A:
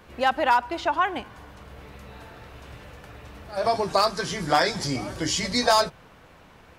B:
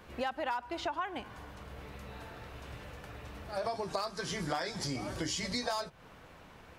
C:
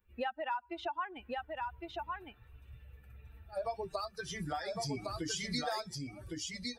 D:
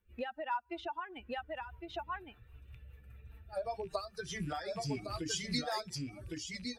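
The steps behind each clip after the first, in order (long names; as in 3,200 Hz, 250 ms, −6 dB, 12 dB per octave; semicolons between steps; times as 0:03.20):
downward compressor 5 to 1, threshold −30 dBFS, peak gain reduction 13.5 dB; level −3 dB
spectral dynamics exaggerated over time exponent 2; single-tap delay 1,109 ms −3 dB; level +1 dB
loose part that buzzes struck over −45 dBFS, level −46 dBFS; rotating-speaker cabinet horn 5 Hz; level +2 dB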